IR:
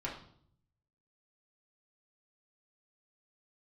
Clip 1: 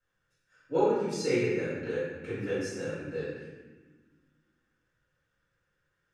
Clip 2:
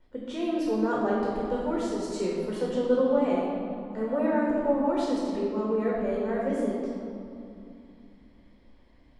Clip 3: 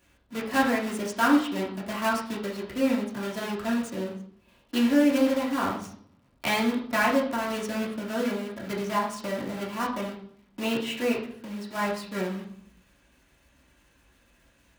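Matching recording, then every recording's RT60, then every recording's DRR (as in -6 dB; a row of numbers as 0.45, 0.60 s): 3; 1.4, 2.8, 0.60 s; -13.5, -5.0, -5.5 dB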